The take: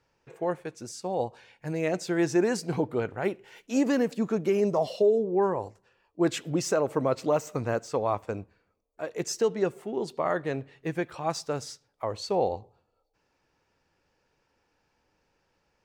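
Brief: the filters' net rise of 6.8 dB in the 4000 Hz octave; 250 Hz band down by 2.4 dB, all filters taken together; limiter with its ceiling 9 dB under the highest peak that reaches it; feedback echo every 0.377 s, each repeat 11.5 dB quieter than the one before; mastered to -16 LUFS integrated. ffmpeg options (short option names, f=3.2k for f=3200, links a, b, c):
-af "equalizer=f=250:t=o:g=-3.5,equalizer=f=4k:t=o:g=9,alimiter=limit=-23.5dB:level=0:latency=1,aecho=1:1:377|754|1131:0.266|0.0718|0.0194,volume=18dB"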